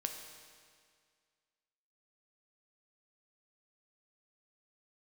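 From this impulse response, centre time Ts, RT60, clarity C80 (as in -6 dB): 44 ms, 2.0 s, 7.0 dB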